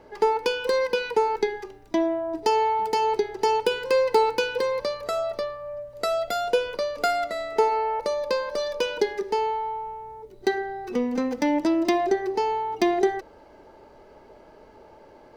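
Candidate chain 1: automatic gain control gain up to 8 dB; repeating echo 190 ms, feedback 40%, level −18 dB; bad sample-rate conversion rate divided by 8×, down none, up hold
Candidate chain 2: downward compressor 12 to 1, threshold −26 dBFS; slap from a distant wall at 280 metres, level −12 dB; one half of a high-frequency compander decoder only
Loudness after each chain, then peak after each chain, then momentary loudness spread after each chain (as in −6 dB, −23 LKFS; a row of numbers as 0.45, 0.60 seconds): −18.5, −31.0 LKFS; −3.0, −11.5 dBFS; 8, 13 LU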